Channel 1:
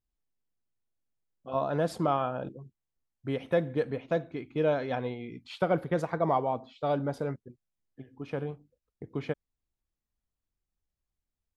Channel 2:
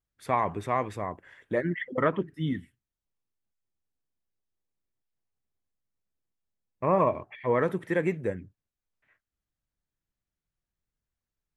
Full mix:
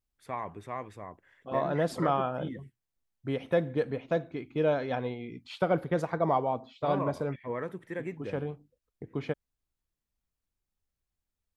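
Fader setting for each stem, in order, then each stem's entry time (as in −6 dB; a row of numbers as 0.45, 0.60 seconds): 0.0, −10.0 decibels; 0.00, 0.00 seconds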